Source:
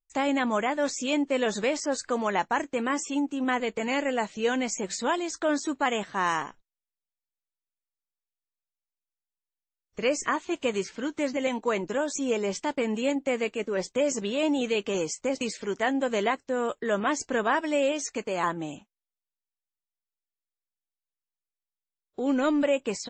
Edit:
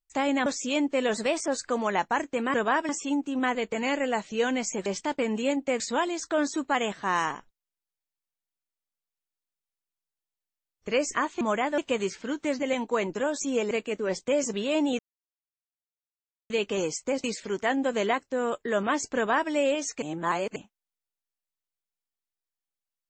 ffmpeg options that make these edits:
-filter_complex "[0:a]asplit=14[a][b][c][d][e][f][g][h][i][j][k][l][m][n];[a]atrim=end=0.462[o];[b]atrim=start=0.828:end=1.514[p];[c]atrim=start=1.51:end=1.88,asetpts=PTS-STARTPTS,asetrate=48069,aresample=44100[q];[d]atrim=start=1.876:end=2.942[r];[e]atrim=start=17.328:end=17.682[s];[f]atrim=start=2.938:end=4.912[t];[g]atrim=start=12.448:end=13.392[u];[h]atrim=start=4.908:end=10.522[v];[i]atrim=start=0.458:end=0.832[w];[j]atrim=start=10.518:end=12.452[x];[k]atrim=start=13.388:end=14.67,asetpts=PTS-STARTPTS,afade=t=out:st=1.278:d=0.004:c=hsin,apad=pad_dur=1.51[y];[l]atrim=start=14.67:end=18.192,asetpts=PTS-STARTPTS,afade=t=in:d=0.004:c=hsin[z];[m]atrim=start=18.188:end=18.732,asetpts=PTS-STARTPTS,areverse[aa];[n]atrim=start=18.728[ab];[o][p]acrossfade=d=0.004:c1=hsin:c2=hsin[ac];[ac][q]acrossfade=d=0.004:c1=hsin:c2=hsin[ad];[ad][r]acrossfade=d=0.004:c1=hsin:c2=hsin[ae];[ae][s]acrossfade=d=0.004:c1=hsin:c2=hsin[af];[af][t]acrossfade=d=0.004:c1=hsin:c2=hsin[ag];[ag][u]acrossfade=d=0.004:c1=hsin:c2=hsin[ah];[ah][v]acrossfade=d=0.004:c1=hsin:c2=hsin[ai];[ai][w]acrossfade=d=0.004:c1=hsin:c2=hsin[aj];[aj][x]acrossfade=d=0.004:c1=hsin:c2=hsin[ak];[y][z]concat=n=2:v=0:a=1[al];[ak][al]acrossfade=d=0.004:c1=hsin:c2=hsin[am];[am][aa]acrossfade=d=0.004:c1=hsin:c2=hsin[an];[an][ab]acrossfade=d=0.004:c1=hsin:c2=hsin"

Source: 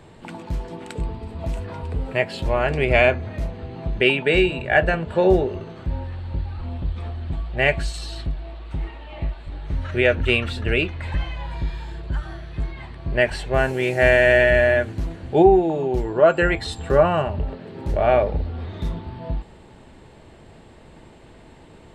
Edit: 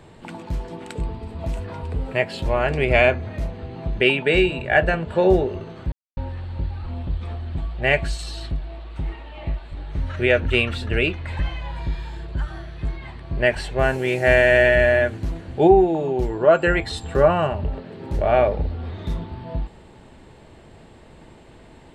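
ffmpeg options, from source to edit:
-filter_complex "[0:a]asplit=2[a][b];[a]atrim=end=5.92,asetpts=PTS-STARTPTS,afade=t=out:st=5.916:d=0.004:c=hsin,apad=pad_dur=0.25[c];[b]atrim=start=5.92,asetpts=PTS-STARTPTS,afade=t=in:d=0.004:c=hsin[d];[c][d]concat=n=2:v=0:a=1"

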